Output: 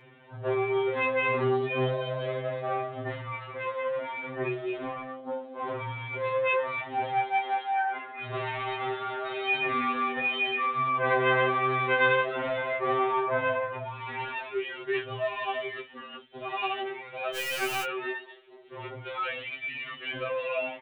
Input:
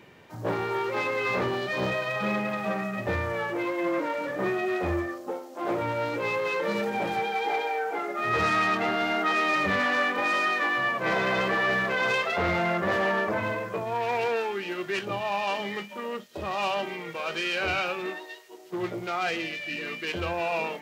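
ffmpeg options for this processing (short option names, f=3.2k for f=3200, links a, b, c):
-filter_complex "[0:a]aresample=8000,aresample=44100,asettb=1/sr,asplit=3[a][b][c];[a]atrim=end=17.354[d];[b]atrim=start=17.35:end=17.84,asetpts=PTS-STARTPTS,afade=t=in:d=0.004:c=qsin,afade=t=out:st=0.486:d=0.004:c=qsin,acrusher=bits=6:dc=4:mix=0:aa=0.000001[e];[c]atrim=start=17.836[f];[d][e]acrossfade=d=0.004:c1=hsin:c2=qsin[g];[g][f]acrossfade=d=0.004:c1=qsin:c2=hsin,afftfilt=real='re*2.45*eq(mod(b,6),0)':imag='im*2.45*eq(mod(b,6),0)':win_size=2048:overlap=0.75"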